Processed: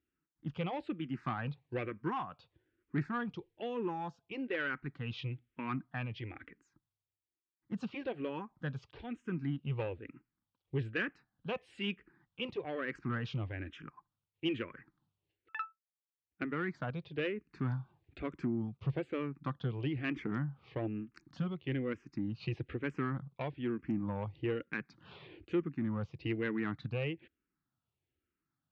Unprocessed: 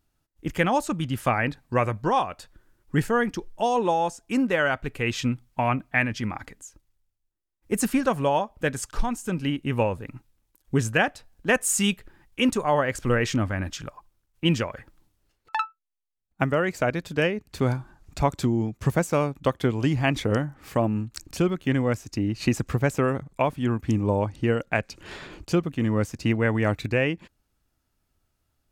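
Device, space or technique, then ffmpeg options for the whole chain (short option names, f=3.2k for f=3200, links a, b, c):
barber-pole phaser into a guitar amplifier: -filter_complex "[0:a]asplit=2[a][b];[b]afreqshift=-1.1[c];[a][c]amix=inputs=2:normalize=1,asoftclip=type=tanh:threshold=-19dB,highpass=100,equalizer=f=140:t=q:w=4:g=5,equalizer=f=340:t=q:w=4:g=4,equalizer=f=620:t=q:w=4:g=-8,equalizer=f=880:t=q:w=4:g=-4,lowpass=f=3.5k:w=0.5412,lowpass=f=3.5k:w=1.3066,volume=-8dB"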